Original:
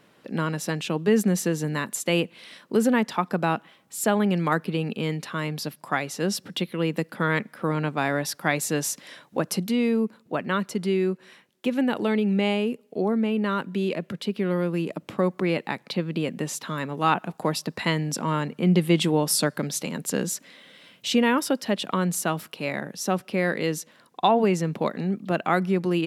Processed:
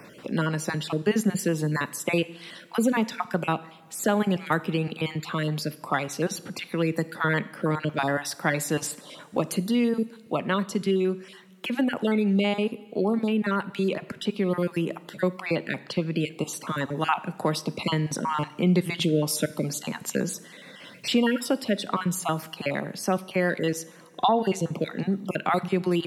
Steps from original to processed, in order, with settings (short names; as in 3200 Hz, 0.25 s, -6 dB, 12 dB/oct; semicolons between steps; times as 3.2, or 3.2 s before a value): random spectral dropouts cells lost 27%; two-slope reverb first 0.71 s, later 2.4 s, from -17 dB, DRR 15 dB; three-band squash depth 40%